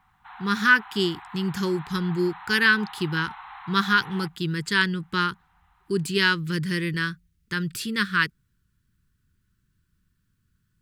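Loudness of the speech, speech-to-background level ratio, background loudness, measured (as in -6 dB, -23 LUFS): -24.5 LUFS, 17.5 dB, -42.0 LUFS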